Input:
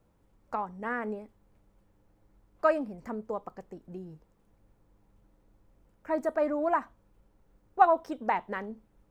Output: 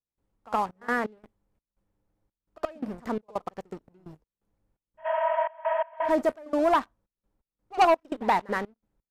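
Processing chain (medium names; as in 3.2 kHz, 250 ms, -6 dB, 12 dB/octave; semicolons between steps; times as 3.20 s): waveshaping leveller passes 3; spectral replace 5.08–6.05 s, 490–3400 Hz after; trance gate ".xxx.x.xx" 85 bpm -24 dB; on a send: reverse echo 70 ms -22 dB; on the sum: resampled via 32 kHz; trim -4.5 dB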